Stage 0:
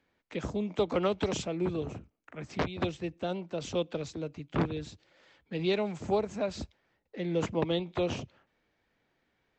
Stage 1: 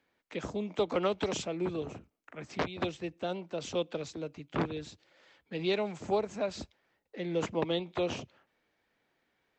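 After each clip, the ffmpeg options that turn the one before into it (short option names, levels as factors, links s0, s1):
-af "lowshelf=f=170:g=-9"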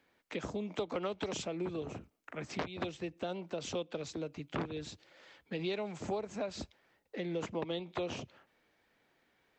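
-af "acompressor=threshold=0.01:ratio=3,volume=1.5"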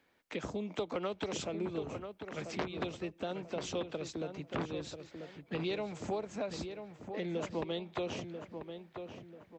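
-filter_complex "[0:a]asplit=2[s0][s1];[s1]adelay=989,lowpass=f=2100:p=1,volume=0.422,asplit=2[s2][s3];[s3]adelay=989,lowpass=f=2100:p=1,volume=0.37,asplit=2[s4][s5];[s5]adelay=989,lowpass=f=2100:p=1,volume=0.37,asplit=2[s6][s7];[s7]adelay=989,lowpass=f=2100:p=1,volume=0.37[s8];[s0][s2][s4][s6][s8]amix=inputs=5:normalize=0"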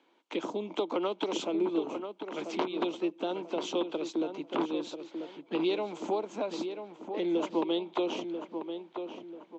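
-af "highpass=f=230:w=0.5412,highpass=f=230:w=1.3066,equalizer=f=330:t=q:w=4:g=9,equalizer=f=940:t=q:w=4:g=8,equalizer=f=1800:t=q:w=4:g=-9,equalizer=f=3200:t=q:w=4:g=5,equalizer=f=5100:t=q:w=4:g=-5,lowpass=f=6900:w=0.5412,lowpass=f=6900:w=1.3066,volume=1.41"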